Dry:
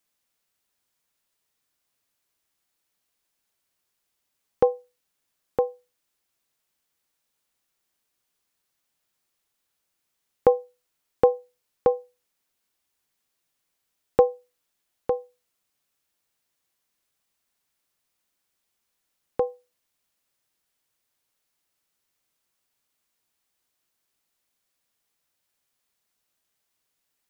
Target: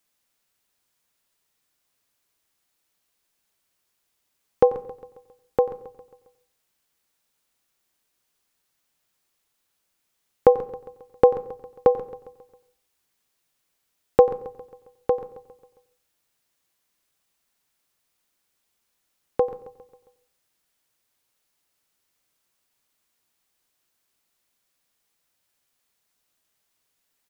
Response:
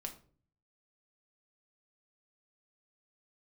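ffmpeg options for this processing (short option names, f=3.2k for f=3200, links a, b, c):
-filter_complex "[0:a]aecho=1:1:135|270|405|540|675:0.158|0.084|0.0445|0.0236|0.0125,asplit=2[a][b];[1:a]atrim=start_sample=2205,asetrate=28224,aresample=44100,adelay=90[c];[b][c]afir=irnorm=-1:irlink=0,volume=-16dB[d];[a][d]amix=inputs=2:normalize=0,volume=3dB"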